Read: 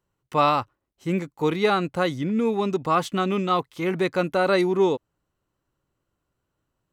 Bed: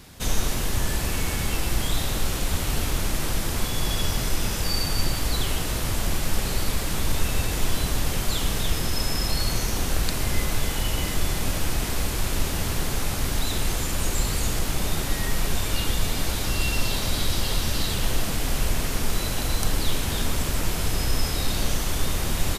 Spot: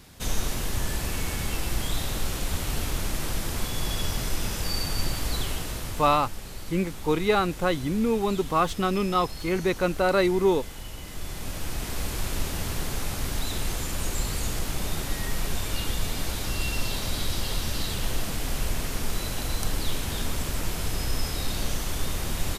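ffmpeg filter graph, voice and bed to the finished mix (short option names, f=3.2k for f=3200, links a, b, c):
-filter_complex "[0:a]adelay=5650,volume=-1.5dB[a];[1:a]volume=6dB,afade=t=out:st=5.36:d=0.96:silence=0.316228,afade=t=in:st=11.04:d=1.09:silence=0.334965[b];[a][b]amix=inputs=2:normalize=0"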